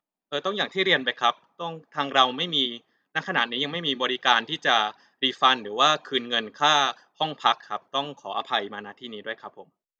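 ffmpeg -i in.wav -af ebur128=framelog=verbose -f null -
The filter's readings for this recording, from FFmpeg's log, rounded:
Integrated loudness:
  I:         -24.0 LUFS
  Threshold: -34.6 LUFS
Loudness range:
  LRA:         3.4 LU
  Threshold: -44.0 LUFS
  LRA low:   -25.8 LUFS
  LRA high:  -22.4 LUFS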